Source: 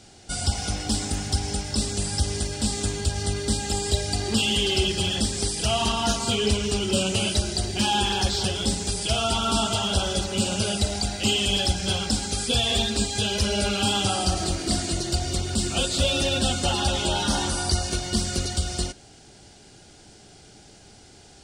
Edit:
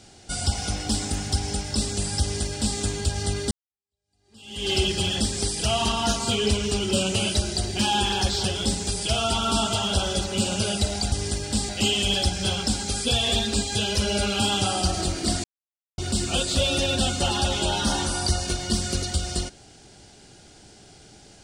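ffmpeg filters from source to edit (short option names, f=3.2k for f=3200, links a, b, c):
-filter_complex "[0:a]asplit=6[a][b][c][d][e][f];[a]atrim=end=3.51,asetpts=PTS-STARTPTS,afade=t=out:st=3.506:d=0.004:c=hsin[g];[b]atrim=start=3.51:end=11.122,asetpts=PTS-STARTPTS,afade=t=in:d=1.19:c=exp[h];[c]atrim=start=2.208:end=2.782[i];[d]atrim=start=11.118:end=14.87,asetpts=PTS-STARTPTS,afade=t=out:st=3.748:d=0.004:c=hsin[j];[e]atrim=start=14.87:end=15.41,asetpts=PTS-STARTPTS,volume=0[k];[f]atrim=start=15.41,asetpts=PTS-STARTPTS,afade=t=in:d=0.004:c=hsin[l];[g][h]concat=n=2:v=0:a=1[m];[m][i]acrossfade=d=0.004:c1=hsin:c2=hsin[n];[j][k][l]concat=n=3:v=0:a=1[o];[n][o]acrossfade=d=0.004:c1=hsin:c2=hsin"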